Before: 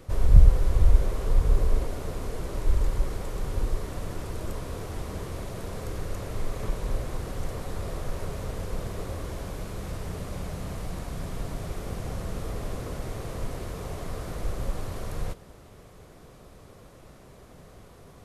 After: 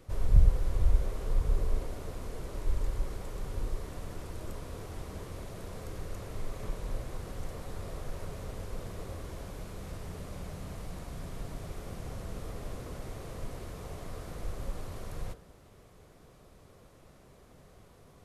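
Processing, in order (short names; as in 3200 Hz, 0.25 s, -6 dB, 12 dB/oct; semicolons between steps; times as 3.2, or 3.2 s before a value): de-hum 57.12 Hz, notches 33; gain -6.5 dB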